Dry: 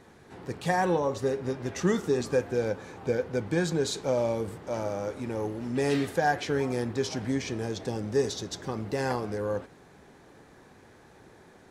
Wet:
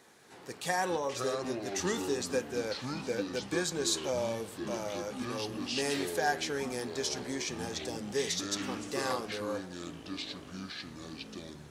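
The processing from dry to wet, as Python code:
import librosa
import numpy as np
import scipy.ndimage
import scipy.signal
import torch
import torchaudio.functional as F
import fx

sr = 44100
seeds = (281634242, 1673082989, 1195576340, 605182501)

y = fx.highpass(x, sr, hz=360.0, slope=6)
y = fx.high_shelf(y, sr, hz=3200.0, db=11.0)
y = fx.echo_pitch(y, sr, ms=225, semitones=-6, count=2, db_per_echo=-6.0)
y = y * 10.0 ** (-5.0 / 20.0)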